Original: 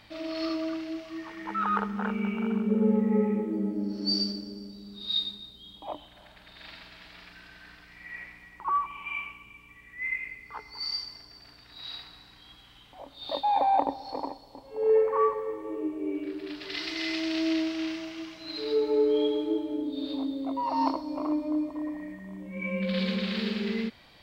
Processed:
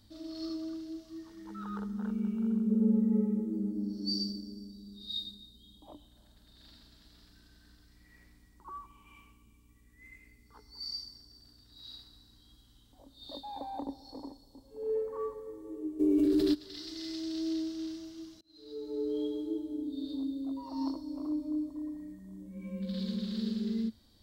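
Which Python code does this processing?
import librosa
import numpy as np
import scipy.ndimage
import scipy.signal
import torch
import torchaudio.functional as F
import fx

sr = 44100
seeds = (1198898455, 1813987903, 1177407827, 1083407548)

y = fx.env_flatten(x, sr, amount_pct=100, at=(15.99, 16.53), fade=0.02)
y = fx.edit(y, sr, fx.fade_in_span(start_s=18.41, length_s=0.72), tone=tone)
y = fx.curve_eq(y, sr, hz=(110.0, 150.0, 220.0, 710.0, 1600.0, 2400.0, 3700.0, 7800.0), db=(0, -16, 0, -18, -18, -27, -9, -1))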